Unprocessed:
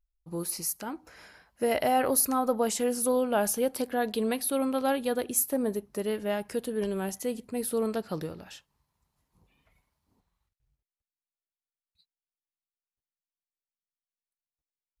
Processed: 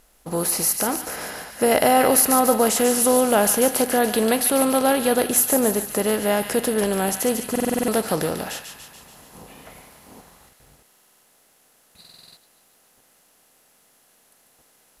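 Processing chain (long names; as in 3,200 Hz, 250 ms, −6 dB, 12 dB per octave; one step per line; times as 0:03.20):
compressor on every frequency bin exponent 0.6
on a send: delay with a high-pass on its return 144 ms, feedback 60%, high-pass 1,800 Hz, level −6 dB
on the sum: buffer that repeats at 0:07.51/0:10.86/0:12.00, samples 2,048, times 7
level +6 dB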